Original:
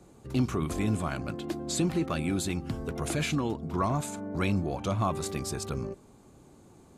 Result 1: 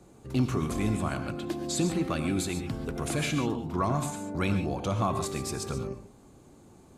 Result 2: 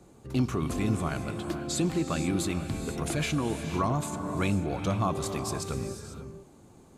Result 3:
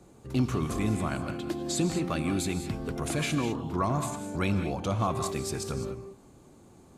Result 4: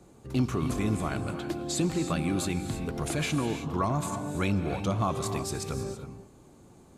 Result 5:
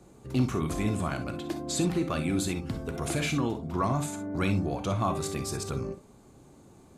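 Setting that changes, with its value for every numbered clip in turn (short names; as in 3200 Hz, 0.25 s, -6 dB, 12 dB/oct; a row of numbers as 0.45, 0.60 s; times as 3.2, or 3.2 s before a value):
non-linear reverb, gate: 160, 520, 230, 350, 80 ms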